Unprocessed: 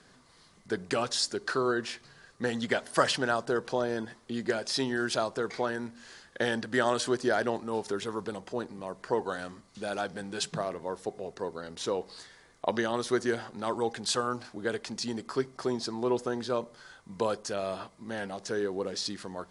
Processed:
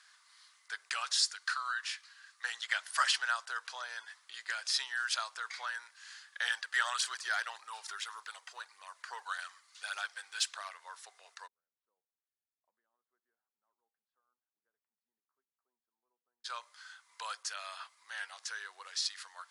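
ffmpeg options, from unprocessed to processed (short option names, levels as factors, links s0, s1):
-filter_complex "[0:a]asettb=1/sr,asplit=3[s0][s1][s2];[s0]atrim=end=1.344[s3];[s1]atrim=start=1.34:end=2.44,asetpts=PTS-STARTPTS,afade=t=in:d=0.004:c=qsin,afade=t=out:st=1.096:d=0.004:c=qsin,highpass=780[s4];[s2]atrim=start=2.436[s5];[s3][s4]acrossfade=d=0.004:c1=hsin:c2=qsin[s6];[s6][s5]acrossfade=d=0.004:c1=qsin:c2=hsin,asettb=1/sr,asplit=3[s7][s8][s9];[s7]atrim=end=6.454[s10];[s8]atrim=start=6.45:end=10.73,asetpts=PTS-STARTPTS,afade=t=in:d=0.004:c=qsin,afade=t=out:st=4.276:d=0.004:c=qsin,aphaser=in_gain=1:out_gain=1:delay=2.9:decay=0.39:speed=1.7:type=triangular[s11];[s9]atrim=start=10.726[s12];[s10][s11]acrossfade=d=0.004:c1=hsin:c2=qsin[s13];[s13][s12]acrossfade=d=0.004:c1=qsin:c2=hsin,asplit=3[s14][s15][s16];[s14]afade=t=out:st=11.46:d=0.02[s17];[s15]asuperpass=centerf=150:order=4:qfactor=1.9,afade=t=in:st=11.46:d=0.02,afade=t=out:st=16.44:d=0.02[s18];[s16]afade=t=in:st=16.44:d=0.02[s19];[s17][s18][s19]amix=inputs=3:normalize=0,highpass=f=1200:w=0.5412,highpass=f=1200:w=1.3066"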